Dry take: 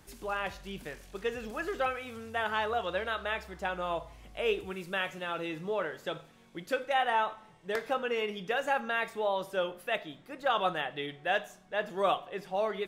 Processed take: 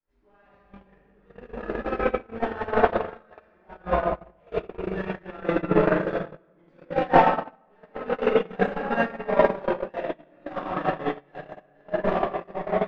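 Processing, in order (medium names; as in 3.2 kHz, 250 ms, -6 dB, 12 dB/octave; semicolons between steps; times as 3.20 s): waveshaping leveller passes 5; 2.94–3.39 s: high-pass 620 Hz -> 180 Hz 12 dB/octave; 5.86–6.74 s: waveshaping leveller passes 1; peak limiter -18.5 dBFS, peak gain reduction 6.5 dB; low-pass 1.7 kHz 12 dB/octave; simulated room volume 120 m³, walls hard, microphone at 2.2 m; gate -4 dBFS, range -44 dB; 9.95–10.53 s: three bands compressed up and down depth 70%; trim -3 dB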